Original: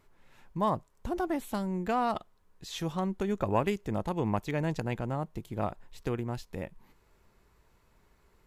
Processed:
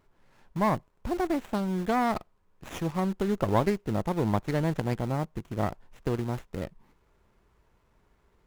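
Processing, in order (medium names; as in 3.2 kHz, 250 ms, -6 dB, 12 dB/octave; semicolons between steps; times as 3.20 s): in parallel at -8.5 dB: word length cut 6-bit, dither none; on the sum: sliding maximum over 9 samples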